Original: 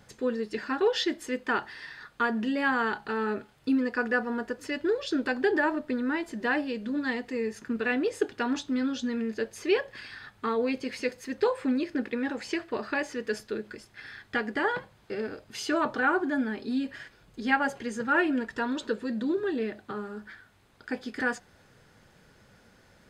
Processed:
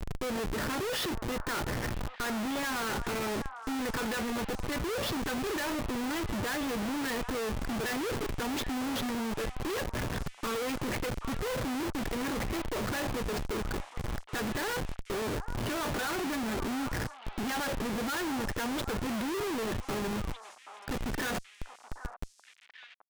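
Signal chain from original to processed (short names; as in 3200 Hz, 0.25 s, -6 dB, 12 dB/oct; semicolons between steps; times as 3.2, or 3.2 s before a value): low-pass opened by the level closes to 760 Hz, open at -24 dBFS; dynamic EQ 260 Hz, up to -3 dB, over -40 dBFS, Q 2.7; in parallel at -3 dB: compressor 6:1, threshold -41 dBFS, peak gain reduction 20.5 dB; on the sum: buzz 120 Hz, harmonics 11, -51 dBFS -2 dB/oct; Schmitt trigger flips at -38.5 dBFS; on a send: delay with a stepping band-pass 0.779 s, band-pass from 1000 Hz, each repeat 1.4 oct, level -7.5 dB; on the sum: gain -2.5 dB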